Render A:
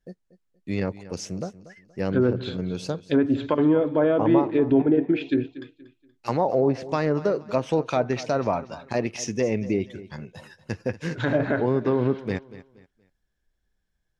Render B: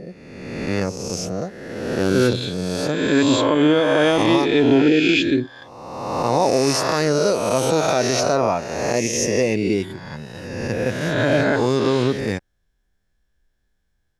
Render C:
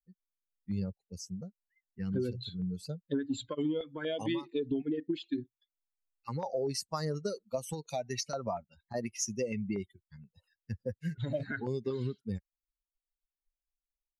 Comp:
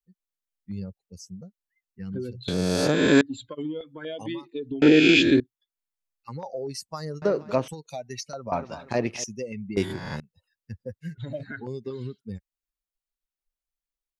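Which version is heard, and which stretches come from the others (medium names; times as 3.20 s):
C
2.48–3.21 s: from B
4.82–5.40 s: from B
7.22–7.68 s: from A
8.52–9.24 s: from A
9.77–10.20 s: from B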